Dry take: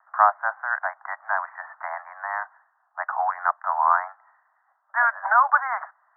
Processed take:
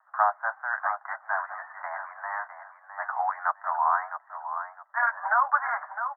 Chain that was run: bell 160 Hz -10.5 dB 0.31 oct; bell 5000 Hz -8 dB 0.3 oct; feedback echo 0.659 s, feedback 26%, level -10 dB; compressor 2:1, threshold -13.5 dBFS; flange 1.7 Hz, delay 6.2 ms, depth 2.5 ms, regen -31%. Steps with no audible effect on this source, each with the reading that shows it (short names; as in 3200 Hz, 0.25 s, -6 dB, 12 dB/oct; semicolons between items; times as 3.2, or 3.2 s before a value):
bell 160 Hz: input band starts at 540 Hz; bell 5000 Hz: input band ends at 2200 Hz